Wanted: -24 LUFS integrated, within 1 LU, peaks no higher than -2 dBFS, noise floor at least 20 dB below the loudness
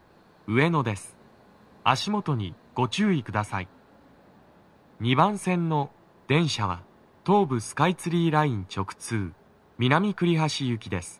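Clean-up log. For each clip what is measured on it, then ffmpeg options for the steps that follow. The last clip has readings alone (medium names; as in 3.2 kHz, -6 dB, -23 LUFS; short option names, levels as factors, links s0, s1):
loudness -26.0 LUFS; peak level -4.5 dBFS; loudness target -24.0 LUFS
-> -af "volume=1.26"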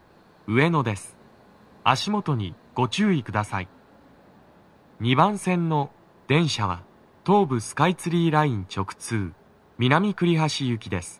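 loudness -24.0 LUFS; peak level -2.5 dBFS; noise floor -55 dBFS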